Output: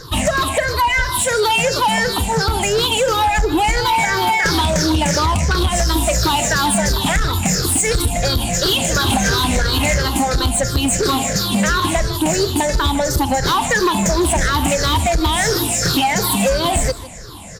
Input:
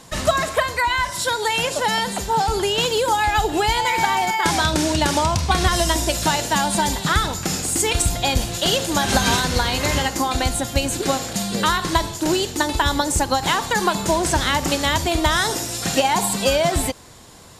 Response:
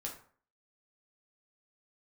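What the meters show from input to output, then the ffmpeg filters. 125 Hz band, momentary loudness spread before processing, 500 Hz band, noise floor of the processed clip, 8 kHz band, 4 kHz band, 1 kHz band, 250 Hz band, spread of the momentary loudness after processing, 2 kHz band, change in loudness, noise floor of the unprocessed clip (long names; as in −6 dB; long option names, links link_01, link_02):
+5.5 dB, 3 LU, +3.0 dB, −22 dBFS, +4.0 dB, +3.0 dB, +2.0 dB, +4.5 dB, 2 LU, +3.0 dB, +3.5 dB, −32 dBFS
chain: -filter_complex "[0:a]afftfilt=real='re*pow(10,21/40*sin(2*PI*(0.57*log(max(b,1)*sr/1024/100)/log(2)-(-2.9)*(pts-256)/sr)))':imag='im*pow(10,21/40*sin(2*PI*(0.57*log(max(b,1)*sr/1024/100)/log(2)-(-2.9)*(pts-256)/sr)))':win_size=1024:overlap=0.75,asplit=2[link_01][link_02];[link_02]alimiter=limit=-7.5dB:level=0:latency=1,volume=-1dB[link_03];[link_01][link_03]amix=inputs=2:normalize=0,lowshelf=frequency=110:gain=8,acompressor=threshold=-8dB:ratio=6,asoftclip=type=tanh:threshold=-9dB,asplit=2[link_04][link_05];[link_05]aecho=0:1:154:0.126[link_06];[link_04][link_06]amix=inputs=2:normalize=0,volume=-1.5dB"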